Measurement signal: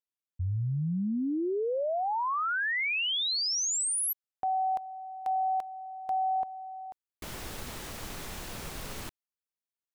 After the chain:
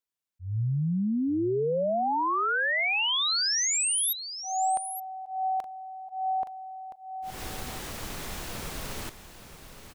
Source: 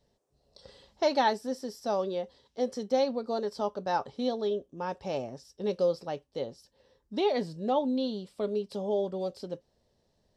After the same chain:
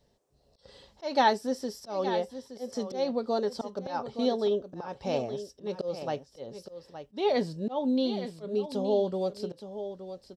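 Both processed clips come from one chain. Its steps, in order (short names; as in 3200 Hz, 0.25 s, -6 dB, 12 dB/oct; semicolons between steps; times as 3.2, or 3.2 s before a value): auto swell 0.203 s; echo 0.87 s -11 dB; gain +3 dB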